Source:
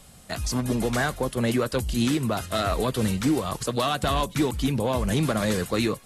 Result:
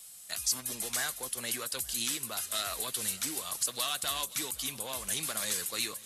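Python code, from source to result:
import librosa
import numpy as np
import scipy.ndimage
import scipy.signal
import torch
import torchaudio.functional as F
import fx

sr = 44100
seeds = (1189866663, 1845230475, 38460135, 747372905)

y = fx.wow_flutter(x, sr, seeds[0], rate_hz=2.1, depth_cents=21.0)
y = librosa.effects.preemphasis(y, coef=0.97, zi=[0.0])
y = fx.echo_swing(y, sr, ms=873, ratio=1.5, feedback_pct=47, wet_db=-22)
y = y * 10.0 ** (4.0 / 20.0)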